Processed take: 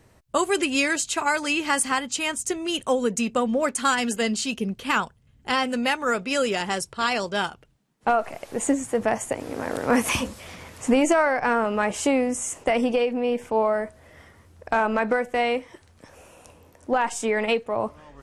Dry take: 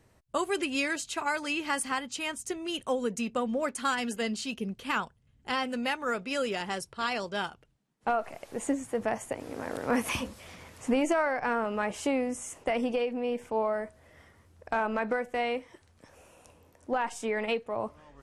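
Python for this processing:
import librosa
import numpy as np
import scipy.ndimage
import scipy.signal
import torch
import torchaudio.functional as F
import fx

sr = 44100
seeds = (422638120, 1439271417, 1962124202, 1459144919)

y = fx.dynamic_eq(x, sr, hz=7500.0, q=1.8, threshold_db=-54.0, ratio=4.0, max_db=5)
y = y * 10.0 ** (7.0 / 20.0)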